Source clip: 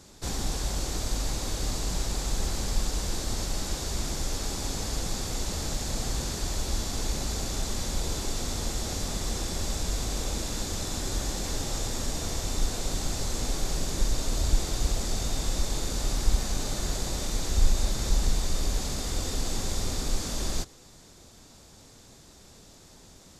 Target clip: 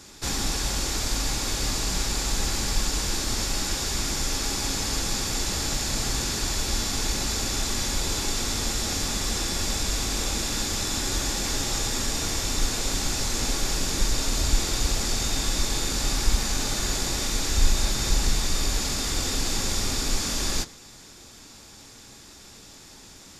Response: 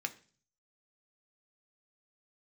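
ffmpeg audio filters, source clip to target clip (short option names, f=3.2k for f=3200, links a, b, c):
-filter_complex "[0:a]equalizer=f=590:t=o:w=0.7:g=-4,asplit=2[a][b];[1:a]atrim=start_sample=2205,lowshelf=f=360:g=-6[c];[b][c]afir=irnorm=-1:irlink=0,volume=3dB[d];[a][d]amix=inputs=2:normalize=0"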